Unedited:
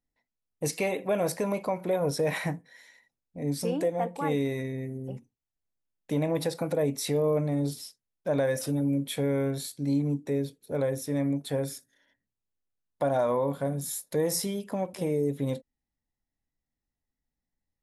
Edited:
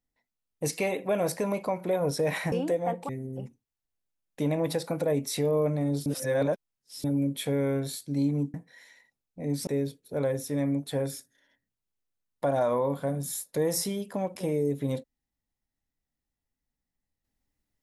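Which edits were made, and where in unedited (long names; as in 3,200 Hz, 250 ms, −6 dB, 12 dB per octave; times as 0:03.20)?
0:02.52–0:03.65: move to 0:10.25
0:04.22–0:04.80: remove
0:07.77–0:08.75: reverse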